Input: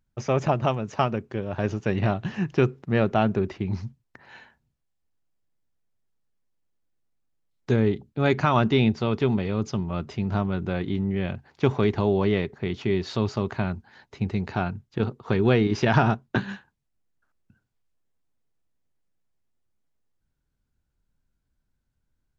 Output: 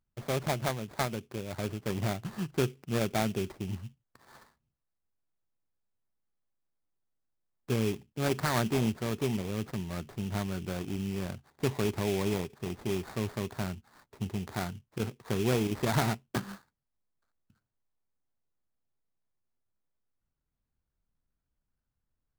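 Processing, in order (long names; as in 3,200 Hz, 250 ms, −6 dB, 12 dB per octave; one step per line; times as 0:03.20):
sample-rate reduction 2,900 Hz, jitter 20%
level −8 dB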